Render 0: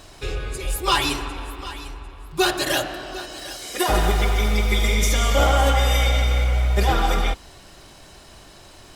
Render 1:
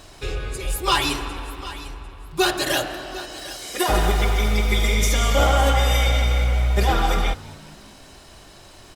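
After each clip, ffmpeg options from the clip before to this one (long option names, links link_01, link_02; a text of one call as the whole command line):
ffmpeg -i in.wav -filter_complex "[0:a]asplit=5[link_01][link_02][link_03][link_04][link_05];[link_02]adelay=204,afreqshift=56,volume=-22dB[link_06];[link_03]adelay=408,afreqshift=112,volume=-27.4dB[link_07];[link_04]adelay=612,afreqshift=168,volume=-32.7dB[link_08];[link_05]adelay=816,afreqshift=224,volume=-38.1dB[link_09];[link_01][link_06][link_07][link_08][link_09]amix=inputs=5:normalize=0" out.wav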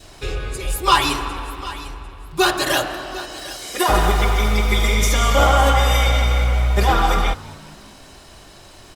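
ffmpeg -i in.wav -af "adynamicequalizer=threshold=0.0112:dfrequency=1100:dqfactor=2:tfrequency=1100:tqfactor=2:attack=5:release=100:ratio=0.375:range=3:mode=boostabove:tftype=bell,volume=2dB" out.wav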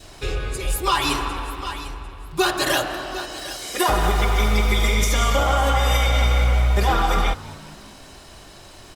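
ffmpeg -i in.wav -af "alimiter=limit=-9dB:level=0:latency=1:release=193" out.wav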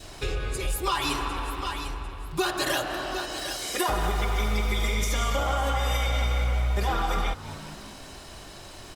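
ffmpeg -i in.wav -af "acompressor=threshold=-28dB:ratio=2" out.wav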